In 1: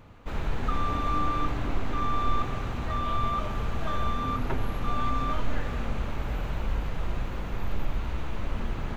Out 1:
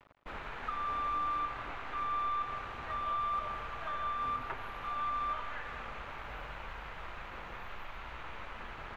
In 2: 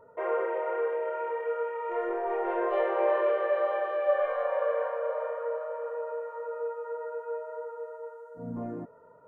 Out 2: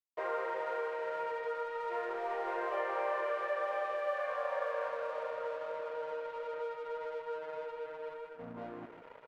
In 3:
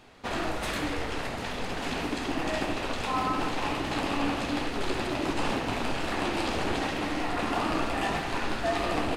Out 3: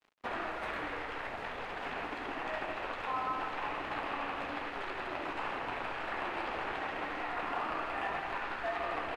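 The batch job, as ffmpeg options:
-filter_complex "[0:a]areverse,acompressor=mode=upward:threshold=0.02:ratio=2.5,areverse,adynamicequalizer=threshold=0.00562:dfrequency=260:dqfactor=1.3:tfrequency=260:tqfactor=1.3:attack=5:release=100:ratio=0.375:range=2.5:mode=cutabove:tftype=bell,aeval=exprs='sgn(val(0))*max(abs(val(0))-0.00531,0)':c=same,acrossover=split=930|2500[s0][s1][s2];[s0]acompressor=threshold=0.0126:ratio=4[s3];[s1]acompressor=threshold=0.0178:ratio=4[s4];[s2]acompressor=threshold=0.00251:ratio=4[s5];[s3][s4][s5]amix=inputs=3:normalize=0,bass=f=250:g=-9,treble=f=4000:g=-13,aecho=1:1:160:0.299"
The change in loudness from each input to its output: -6.5 LU, -7.0 LU, -7.0 LU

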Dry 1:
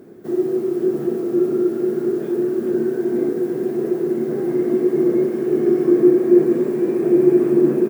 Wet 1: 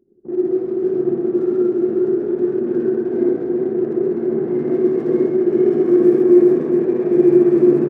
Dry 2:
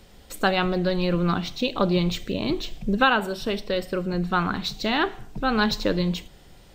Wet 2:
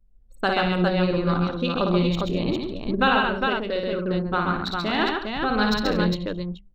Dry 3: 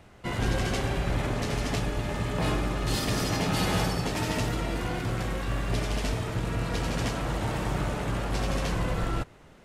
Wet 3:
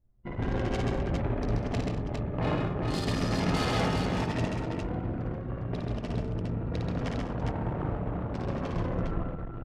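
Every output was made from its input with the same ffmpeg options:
-filter_complex "[0:a]anlmdn=158,bandreject=f=50:t=h:w=6,bandreject=f=100:t=h:w=6,bandreject=f=150:t=h:w=6,bandreject=f=200:t=h:w=6,asplit=2[s0][s1];[s1]aecho=0:1:56|132|159|197|229|406:0.631|0.668|0.188|0.211|0.141|0.631[s2];[s0][s2]amix=inputs=2:normalize=0,volume=0.794"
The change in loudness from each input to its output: +1.5 LU, +1.0 LU, -2.0 LU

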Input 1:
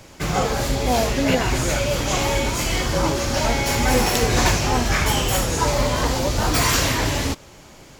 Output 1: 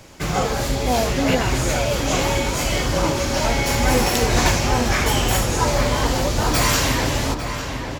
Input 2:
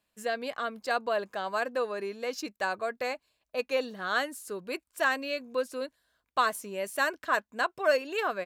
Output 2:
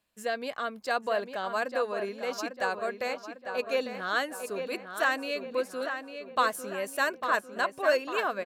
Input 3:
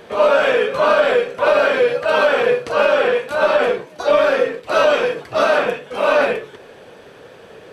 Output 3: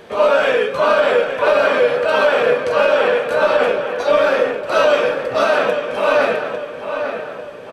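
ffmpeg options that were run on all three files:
-filter_complex "[0:a]asplit=2[s0][s1];[s1]adelay=850,lowpass=f=3300:p=1,volume=0.422,asplit=2[s2][s3];[s3]adelay=850,lowpass=f=3300:p=1,volume=0.5,asplit=2[s4][s5];[s5]adelay=850,lowpass=f=3300:p=1,volume=0.5,asplit=2[s6][s7];[s7]adelay=850,lowpass=f=3300:p=1,volume=0.5,asplit=2[s8][s9];[s9]adelay=850,lowpass=f=3300:p=1,volume=0.5,asplit=2[s10][s11];[s11]adelay=850,lowpass=f=3300:p=1,volume=0.5[s12];[s0][s2][s4][s6][s8][s10][s12]amix=inputs=7:normalize=0"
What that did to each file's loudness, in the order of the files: +0.5 LU, +0.5 LU, +0.5 LU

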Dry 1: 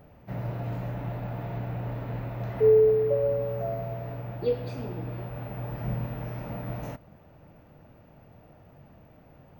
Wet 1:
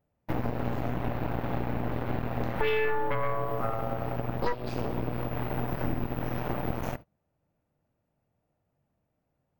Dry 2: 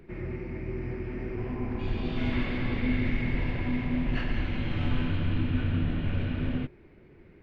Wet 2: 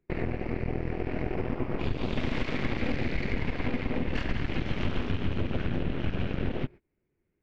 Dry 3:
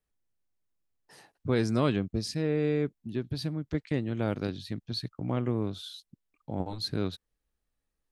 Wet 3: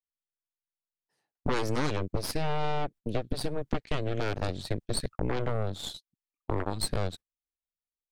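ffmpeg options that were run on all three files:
-af "agate=range=0.0316:threshold=0.00708:ratio=16:detection=peak,aeval=exprs='0.266*(cos(1*acos(clip(val(0)/0.266,-1,1)))-cos(1*PI/2))+0.119*(cos(8*acos(clip(val(0)/0.266,-1,1)))-cos(8*PI/2))':c=same,acompressor=threshold=0.0282:ratio=5,volume=1.88"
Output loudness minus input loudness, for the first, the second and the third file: -3.0 LU, -1.0 LU, -1.5 LU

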